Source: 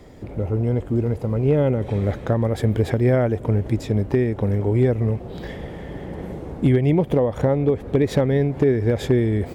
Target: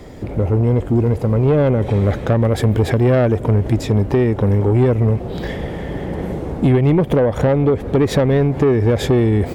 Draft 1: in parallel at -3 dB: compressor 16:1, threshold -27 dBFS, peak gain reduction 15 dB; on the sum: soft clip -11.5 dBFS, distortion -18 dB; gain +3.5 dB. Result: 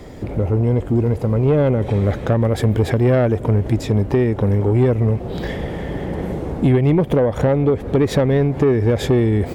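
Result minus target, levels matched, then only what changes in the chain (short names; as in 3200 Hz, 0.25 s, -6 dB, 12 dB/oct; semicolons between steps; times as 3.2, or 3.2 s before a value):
compressor: peak gain reduction +9 dB
change: compressor 16:1, threshold -17.5 dBFS, peak gain reduction 6 dB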